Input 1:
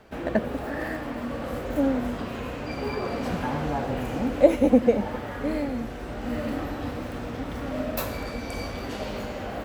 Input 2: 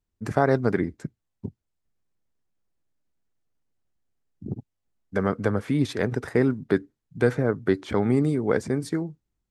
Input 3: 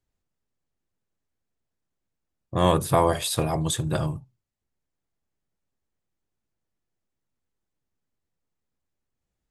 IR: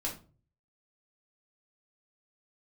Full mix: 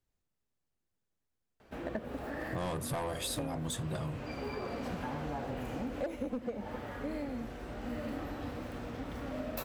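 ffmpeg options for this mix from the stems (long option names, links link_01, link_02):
-filter_complex "[0:a]asoftclip=type=hard:threshold=-11.5dB,adelay=1600,volume=-8dB[link_01];[2:a]asoftclip=type=tanh:threshold=-20dB,volume=-3dB[link_02];[link_01][link_02]amix=inputs=2:normalize=0,acompressor=threshold=-33dB:ratio=10"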